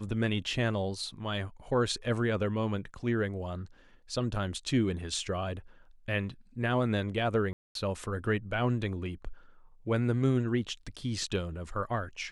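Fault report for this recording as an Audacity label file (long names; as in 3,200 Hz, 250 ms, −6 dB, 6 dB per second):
7.530000	7.750000	drop-out 222 ms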